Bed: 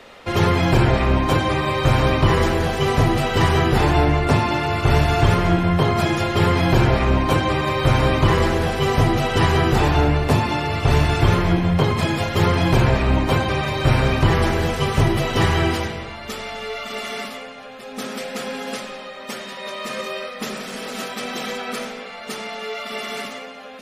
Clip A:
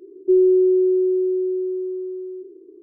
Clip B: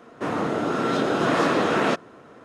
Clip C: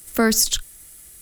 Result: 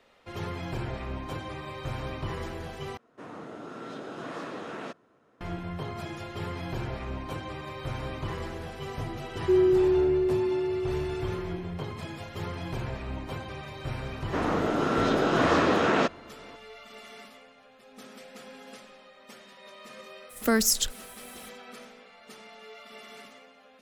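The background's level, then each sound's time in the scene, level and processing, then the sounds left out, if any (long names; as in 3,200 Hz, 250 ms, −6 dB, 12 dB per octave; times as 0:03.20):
bed −18 dB
0:02.97: overwrite with B −17 dB
0:09.20: mix in A −6.5 dB
0:14.12: mix in B −2 dB + low-pass filter 7,600 Hz 24 dB per octave
0:20.29: mix in C −5.5 dB, fades 0.02 s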